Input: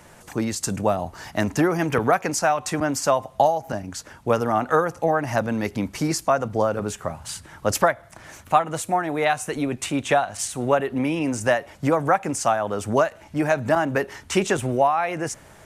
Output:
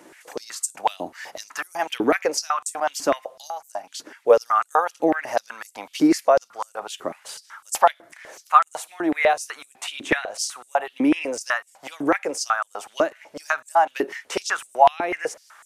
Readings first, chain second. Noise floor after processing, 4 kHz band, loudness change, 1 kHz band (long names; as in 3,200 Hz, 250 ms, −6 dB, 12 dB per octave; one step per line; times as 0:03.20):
−58 dBFS, +1.0 dB, 0.0 dB, +0.5 dB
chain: dynamic equaliser 7,700 Hz, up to −4 dB, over −41 dBFS, Q 1.7
high-pass on a step sequencer 8 Hz 310–8,000 Hz
level −2.5 dB